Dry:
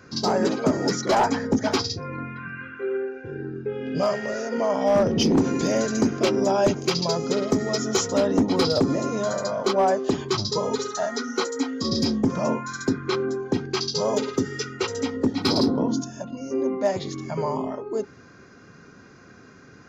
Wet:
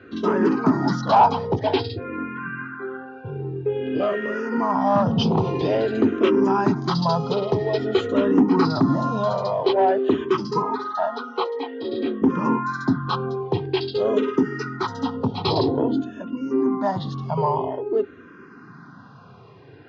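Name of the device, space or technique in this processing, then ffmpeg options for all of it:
barber-pole phaser into a guitar amplifier: -filter_complex "[0:a]asettb=1/sr,asplit=3[a][b][c];[a]atrim=end=10.624[d];[b]atrim=start=10.62:end=12.22,asetpts=PTS-STARTPTS,afade=t=in:d=0.004:c=qsin,afade=t=out:st=1.596:d=0.004:c=qsin,acrossover=split=270 3900:gain=0.0794 1 0.0891[e][f][g];[e][f][g]amix=inputs=3:normalize=0[h];[c]atrim=start=12.216[i];[d][h]acrossfade=d=0.004:c1=hsin:c2=qsin[j];[j][i]acrossfade=d=0.004:c1=qsin:c2=hsin,asplit=2[k][l];[l]afreqshift=-0.5[m];[k][m]amix=inputs=2:normalize=1,asoftclip=type=tanh:threshold=-15dB,highpass=110,equalizer=f=120:t=q:w=4:g=4,equalizer=f=210:t=q:w=4:g=-3,equalizer=f=560:t=q:w=4:g=-7,equalizer=f=960:t=q:w=4:g=4,equalizer=f=1.6k:t=q:w=4:g=-3,equalizer=f=2.2k:t=q:w=4:g=-9,lowpass=f=3.5k:w=0.5412,lowpass=f=3.5k:w=1.3066,volume=8dB"

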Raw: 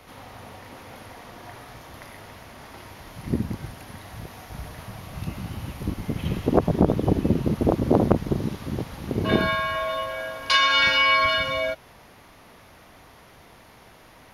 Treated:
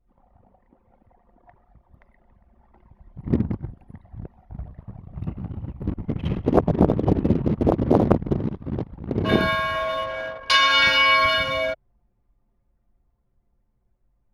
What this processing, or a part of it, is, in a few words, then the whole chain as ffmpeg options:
voice memo with heavy noise removal: -af "anlmdn=10,dynaudnorm=f=270:g=21:m=11.5dB,volume=-1dB"

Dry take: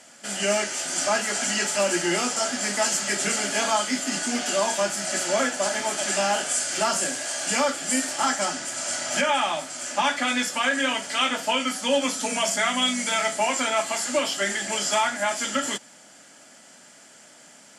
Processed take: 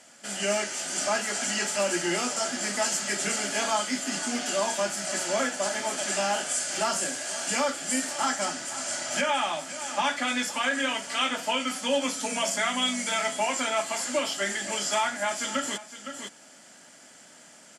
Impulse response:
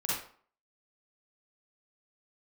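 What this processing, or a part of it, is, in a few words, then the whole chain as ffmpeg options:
ducked delay: -filter_complex "[0:a]asplit=3[a][b][c];[b]adelay=512,volume=-2.5dB[d];[c]apad=whole_len=806963[e];[d][e]sidechaincompress=threshold=-39dB:ratio=5:attack=25:release=634[f];[a][f]amix=inputs=2:normalize=0,volume=-3.5dB"

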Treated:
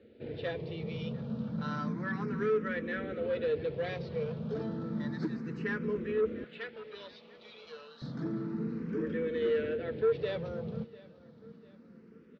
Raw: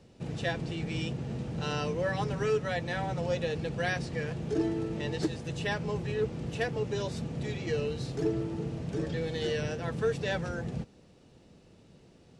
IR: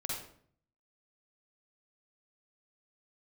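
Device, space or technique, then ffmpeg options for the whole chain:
barber-pole phaser into a guitar amplifier: -filter_complex "[0:a]asplit=2[a][b];[b]afreqshift=0.31[c];[a][c]amix=inputs=2:normalize=1,asoftclip=type=tanh:threshold=-28.5dB,highpass=98,equalizer=f=120:t=q:w=4:g=-6,equalizer=f=220:t=q:w=4:g=10,equalizer=f=460:t=q:w=4:g=7,equalizer=f=780:t=q:w=4:g=-9,equalizer=f=1.4k:t=q:w=4:g=5,equalizer=f=2.8k:t=q:w=4:g=-6,lowpass=f=3.8k:w=0.5412,lowpass=f=3.8k:w=1.3066,asettb=1/sr,asplit=3[d][e][f];[d]atrim=end=6.444[g];[e]atrim=start=6.44:end=8.02,asetpts=PTS-STARTPTS,afade=t=in:d=0.004:c=qsin,afade=t=out:st=1.576:d=0.004:c=qsin,highpass=1.1k[h];[f]atrim=start=8.016[i];[g][h]acrossfade=d=0.004:c1=hsin:c2=qsin[j];[j][i]acrossfade=d=0.004:c1=qsin:c2=hsin,aecho=1:1:697|1394|2091:0.0944|0.0406|0.0175"

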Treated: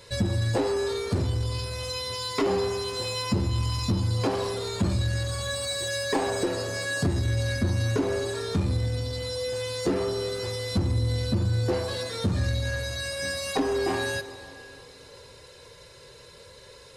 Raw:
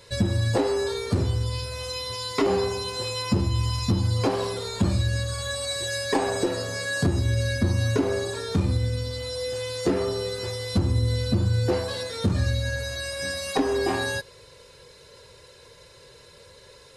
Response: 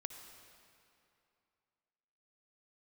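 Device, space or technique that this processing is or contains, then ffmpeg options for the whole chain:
saturated reverb return: -filter_complex "[0:a]asplit=2[a][b];[1:a]atrim=start_sample=2205[c];[b][c]afir=irnorm=-1:irlink=0,asoftclip=type=tanh:threshold=-32.5dB,volume=2.5dB[d];[a][d]amix=inputs=2:normalize=0,volume=-4.5dB"

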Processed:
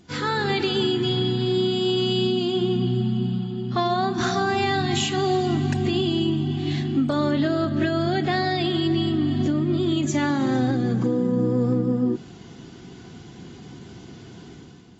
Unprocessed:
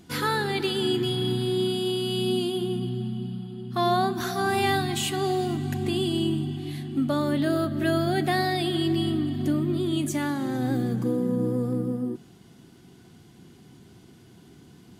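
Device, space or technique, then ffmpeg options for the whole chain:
low-bitrate web radio: -af "dynaudnorm=f=110:g=9:m=10dB,alimiter=limit=-12.5dB:level=0:latency=1:release=393,volume=-1dB" -ar 24000 -c:a aac -b:a 24k

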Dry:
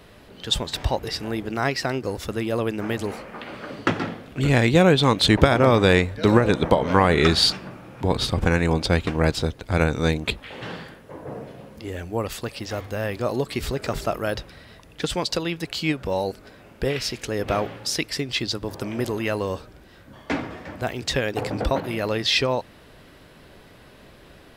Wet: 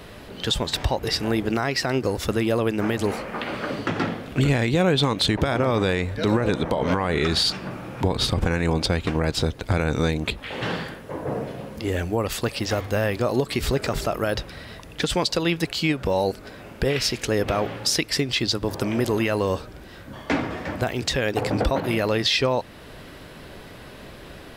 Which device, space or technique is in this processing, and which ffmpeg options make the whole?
stacked limiters: -af "alimiter=limit=-7.5dB:level=0:latency=1:release=293,alimiter=limit=-14dB:level=0:latency=1:release=109,alimiter=limit=-18.5dB:level=0:latency=1:release=335,volume=7dB"

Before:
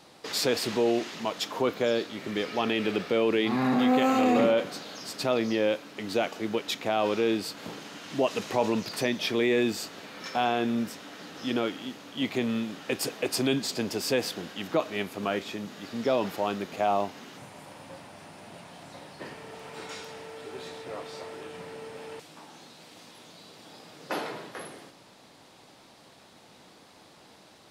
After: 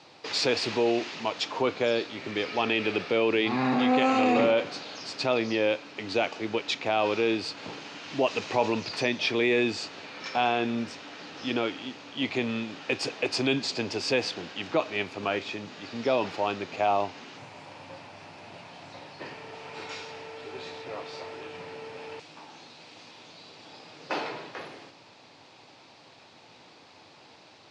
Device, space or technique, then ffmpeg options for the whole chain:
car door speaker: -af "highpass=96,equalizer=f=98:t=q:w=4:g=6,equalizer=f=200:t=q:w=4:g=-6,equalizer=f=880:t=q:w=4:g=3,equalizer=f=2.5k:t=q:w=4:g=6,equalizer=f=4.5k:t=q:w=4:g=3,lowpass=f=6.5k:w=0.5412,lowpass=f=6.5k:w=1.3066"

